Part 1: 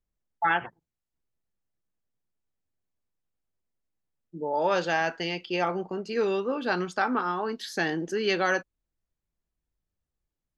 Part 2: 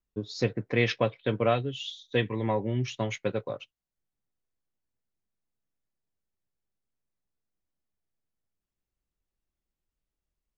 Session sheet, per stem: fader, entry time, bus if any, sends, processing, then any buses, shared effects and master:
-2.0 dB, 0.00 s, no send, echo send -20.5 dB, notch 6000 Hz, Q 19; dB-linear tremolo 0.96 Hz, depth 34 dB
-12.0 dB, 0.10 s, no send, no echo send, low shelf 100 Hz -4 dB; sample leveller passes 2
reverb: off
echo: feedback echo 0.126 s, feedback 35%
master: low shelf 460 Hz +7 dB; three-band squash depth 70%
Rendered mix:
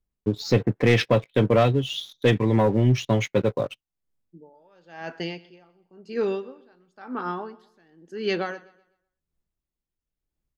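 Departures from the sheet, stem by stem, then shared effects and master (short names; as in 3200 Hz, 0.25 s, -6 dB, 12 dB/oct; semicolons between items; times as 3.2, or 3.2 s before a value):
stem 2 -12.0 dB -> -1.5 dB; master: missing three-band squash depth 70%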